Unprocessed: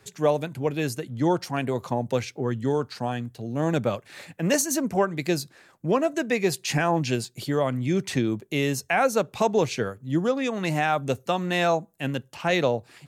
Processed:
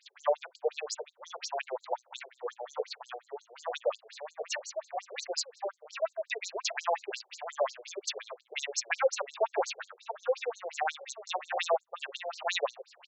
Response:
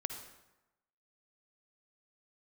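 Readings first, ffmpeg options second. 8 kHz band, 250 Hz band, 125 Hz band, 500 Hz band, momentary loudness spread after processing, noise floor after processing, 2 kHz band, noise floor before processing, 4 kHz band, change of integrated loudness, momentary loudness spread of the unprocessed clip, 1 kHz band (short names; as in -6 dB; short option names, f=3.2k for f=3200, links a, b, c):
-7.0 dB, under -30 dB, under -40 dB, -8.5 dB, 11 LU, -71 dBFS, -8.0 dB, -59 dBFS, -4.0 dB, -9.5 dB, 7 LU, -7.5 dB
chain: -filter_complex "[0:a]aeval=exprs='if(lt(val(0),0),0.708*val(0),val(0))':c=same,highpass=370,aemphasis=mode=production:type=cd,asplit=2[a][b];[b]adelay=641.4,volume=-7dB,highshelf=f=4k:g=-14.4[c];[a][c]amix=inputs=2:normalize=0,afftfilt=real='re*between(b*sr/1024,530*pow(5800/530,0.5+0.5*sin(2*PI*5.6*pts/sr))/1.41,530*pow(5800/530,0.5+0.5*sin(2*PI*5.6*pts/sr))*1.41)':imag='im*between(b*sr/1024,530*pow(5800/530,0.5+0.5*sin(2*PI*5.6*pts/sr))/1.41,530*pow(5800/530,0.5+0.5*sin(2*PI*5.6*pts/sr))*1.41)':win_size=1024:overlap=0.75"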